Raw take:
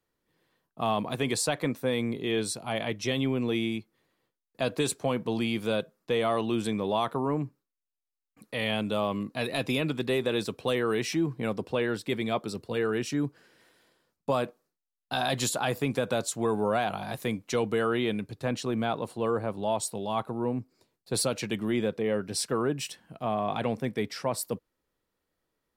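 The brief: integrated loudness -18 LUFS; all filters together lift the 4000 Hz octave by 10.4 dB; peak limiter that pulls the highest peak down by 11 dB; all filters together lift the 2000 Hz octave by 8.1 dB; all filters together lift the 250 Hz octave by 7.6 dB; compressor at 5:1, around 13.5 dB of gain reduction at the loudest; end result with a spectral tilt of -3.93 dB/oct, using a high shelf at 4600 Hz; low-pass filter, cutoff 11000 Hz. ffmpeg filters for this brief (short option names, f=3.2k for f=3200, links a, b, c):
-af "lowpass=11k,equalizer=f=250:t=o:g=9,equalizer=f=2k:t=o:g=6.5,equalizer=f=4k:t=o:g=7,highshelf=f=4.6k:g=8,acompressor=threshold=-33dB:ratio=5,volume=20dB,alimiter=limit=-7.5dB:level=0:latency=1"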